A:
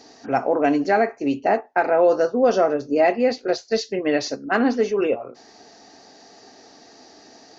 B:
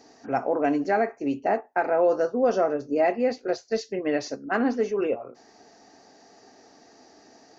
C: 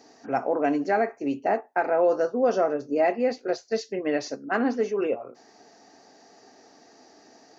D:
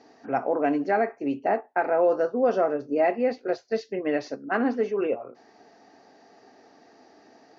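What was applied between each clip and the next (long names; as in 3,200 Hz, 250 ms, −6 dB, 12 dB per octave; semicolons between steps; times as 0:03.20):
parametric band 3,800 Hz −6.5 dB 1 octave; level −4.5 dB
high-pass filter 120 Hz 6 dB per octave
low-pass filter 3,600 Hz 12 dB per octave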